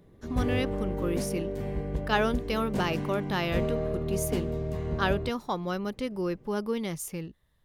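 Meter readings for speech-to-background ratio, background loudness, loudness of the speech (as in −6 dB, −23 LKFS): 1.5 dB, −33.0 LKFS, −31.5 LKFS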